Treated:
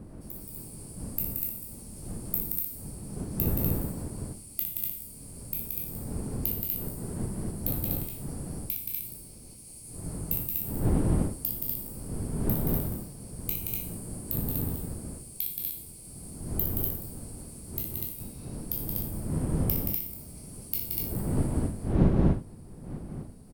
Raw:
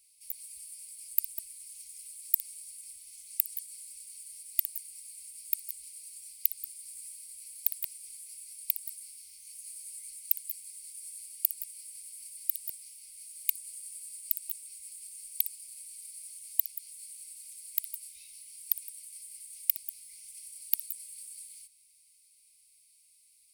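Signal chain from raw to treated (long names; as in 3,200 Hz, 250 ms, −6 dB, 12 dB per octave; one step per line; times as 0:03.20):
peak hold with a decay on every bin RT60 0.55 s
wind on the microphone 200 Hz −29 dBFS
loudspeakers that aren't time-aligned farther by 20 metres −12 dB, 60 metres −4 dB, 84 metres −2 dB
level −7 dB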